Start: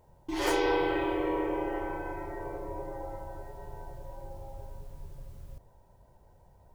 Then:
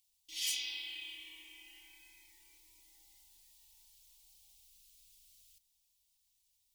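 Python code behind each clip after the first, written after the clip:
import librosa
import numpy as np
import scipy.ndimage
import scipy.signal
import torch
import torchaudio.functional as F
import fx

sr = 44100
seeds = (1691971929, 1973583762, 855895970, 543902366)

y = scipy.signal.sosfilt(scipy.signal.cheby2(4, 40, 1500.0, 'highpass', fs=sr, output='sos'), x)
y = y + 0.63 * np.pad(y, (int(3.5 * sr / 1000.0), 0))[:len(y)]
y = y * librosa.db_to_amplitude(2.5)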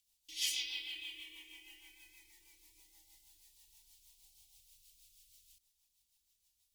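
y = fx.rotary(x, sr, hz=6.3)
y = y * librosa.db_to_amplitude(2.5)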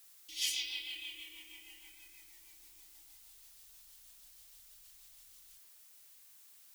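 y = fx.dmg_noise_colour(x, sr, seeds[0], colour='blue', level_db=-61.0)
y = y * librosa.db_to_amplitude(1.0)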